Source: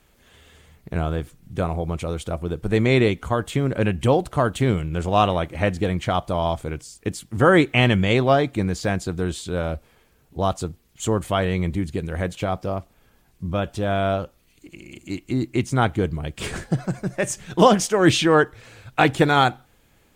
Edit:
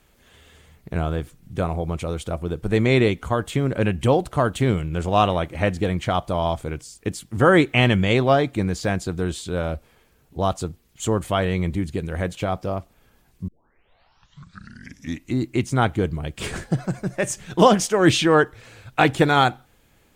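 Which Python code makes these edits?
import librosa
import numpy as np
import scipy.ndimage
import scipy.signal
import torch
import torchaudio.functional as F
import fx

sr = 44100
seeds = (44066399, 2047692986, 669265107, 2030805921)

y = fx.edit(x, sr, fx.tape_start(start_s=13.48, length_s=1.9), tone=tone)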